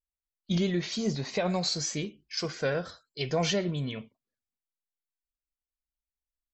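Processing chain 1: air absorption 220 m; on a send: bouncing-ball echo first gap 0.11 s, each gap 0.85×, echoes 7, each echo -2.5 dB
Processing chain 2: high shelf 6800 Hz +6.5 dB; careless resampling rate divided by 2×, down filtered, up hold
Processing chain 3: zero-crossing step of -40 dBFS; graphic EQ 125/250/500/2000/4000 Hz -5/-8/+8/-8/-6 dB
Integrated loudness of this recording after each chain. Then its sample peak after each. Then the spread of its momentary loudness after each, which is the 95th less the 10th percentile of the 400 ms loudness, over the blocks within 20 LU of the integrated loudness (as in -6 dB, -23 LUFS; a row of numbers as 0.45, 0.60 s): -29.0, -30.0, -30.0 LUFS; -13.0, -14.5, -14.0 dBFS; 9, 9, 22 LU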